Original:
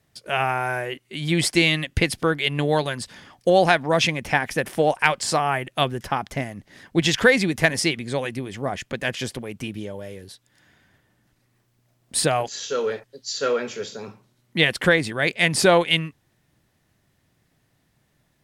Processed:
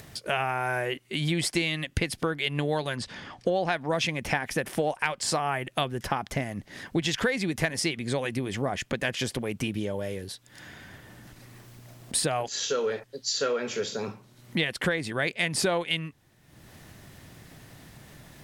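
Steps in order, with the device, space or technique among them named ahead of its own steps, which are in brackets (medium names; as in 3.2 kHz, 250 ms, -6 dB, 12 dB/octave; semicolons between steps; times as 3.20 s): 2.96–3.72 s: Bessel low-pass 4.9 kHz, order 2; upward and downward compression (upward compressor, threshold -39 dBFS; compression 4:1, threshold -29 dBFS, peak gain reduction 15.5 dB); trim +3.5 dB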